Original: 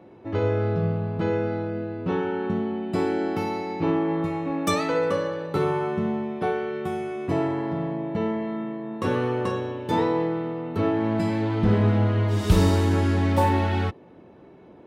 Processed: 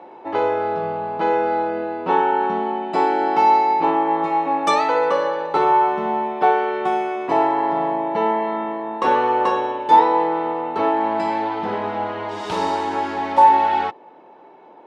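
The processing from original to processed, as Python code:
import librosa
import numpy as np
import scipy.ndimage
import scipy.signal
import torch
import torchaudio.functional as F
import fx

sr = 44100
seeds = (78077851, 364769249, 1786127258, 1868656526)

y = fx.air_absorb(x, sr, metres=86.0)
y = fx.rider(y, sr, range_db=4, speed_s=0.5)
y = scipy.signal.sosfilt(scipy.signal.butter(2, 450.0, 'highpass', fs=sr, output='sos'), y)
y = fx.peak_eq(y, sr, hz=870.0, db=12.0, octaves=0.37)
y = y * 10.0 ** (6.0 / 20.0)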